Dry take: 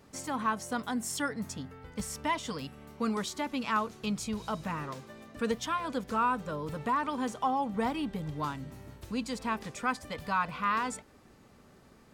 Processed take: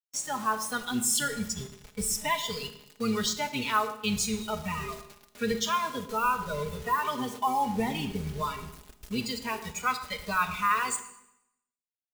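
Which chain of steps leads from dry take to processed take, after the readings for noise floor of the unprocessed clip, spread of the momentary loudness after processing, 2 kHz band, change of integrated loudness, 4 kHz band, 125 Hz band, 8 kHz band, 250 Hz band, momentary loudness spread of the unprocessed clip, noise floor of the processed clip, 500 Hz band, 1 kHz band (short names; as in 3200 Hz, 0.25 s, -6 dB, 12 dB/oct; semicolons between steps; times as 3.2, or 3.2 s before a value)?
-58 dBFS, 9 LU, +4.0 dB, +3.5 dB, +8.0 dB, +2.5 dB, +10.0 dB, +0.5 dB, 10 LU, under -85 dBFS, +2.0 dB, +2.5 dB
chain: octaver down 1 oct, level 0 dB; low shelf 170 Hz -4 dB; in parallel at -1.5 dB: limiter -29 dBFS, peak gain reduction 11 dB; on the sum: requantised 6-bit, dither none; high shelf 2200 Hz +8.5 dB; comb 4.8 ms, depth 58%; spectral noise reduction 13 dB; darkening echo 0.114 s, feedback 42%, low-pass 810 Hz, level -12 dB; Schroeder reverb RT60 0.8 s, combs from 25 ms, DRR 10.5 dB; gain -3 dB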